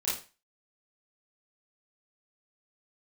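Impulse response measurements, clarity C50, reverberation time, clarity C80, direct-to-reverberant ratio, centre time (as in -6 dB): 3.0 dB, 0.35 s, 10.5 dB, -9.5 dB, 43 ms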